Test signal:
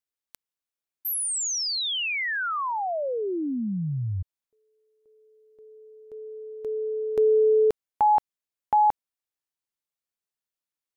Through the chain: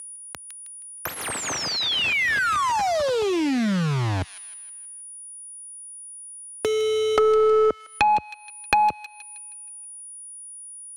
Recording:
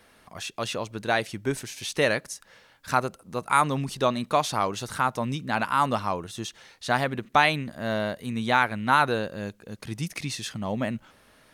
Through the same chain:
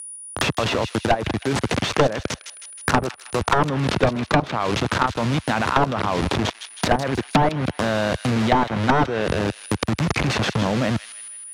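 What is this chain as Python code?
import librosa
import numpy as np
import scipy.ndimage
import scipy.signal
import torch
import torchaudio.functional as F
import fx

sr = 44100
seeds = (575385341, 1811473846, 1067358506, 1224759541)

p1 = fx.delta_hold(x, sr, step_db=-28.5)
p2 = p1 + 10.0 ** (-54.0 / 20.0) * np.sin(2.0 * np.pi * 9700.0 * np.arange(len(p1)) / sr)
p3 = scipy.signal.sosfilt(scipy.signal.butter(4, 68.0, 'highpass', fs=sr, output='sos'), p2)
p4 = fx.level_steps(p3, sr, step_db=22)
p5 = fx.fold_sine(p4, sr, drive_db=17, ceiling_db=-7.0)
p6 = fx.env_lowpass_down(p5, sr, base_hz=940.0, full_db=-11.0)
p7 = p6 + fx.echo_wet_highpass(p6, sr, ms=158, feedback_pct=34, hz=2400.0, wet_db=-9.0, dry=0)
y = fx.band_squash(p7, sr, depth_pct=70)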